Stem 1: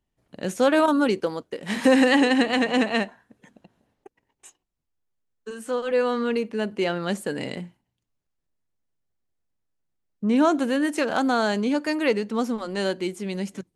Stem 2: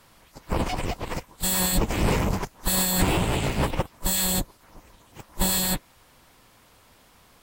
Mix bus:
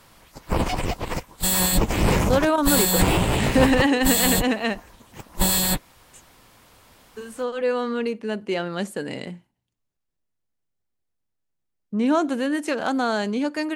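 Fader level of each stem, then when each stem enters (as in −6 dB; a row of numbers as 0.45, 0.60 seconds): −1.0, +3.0 decibels; 1.70, 0.00 seconds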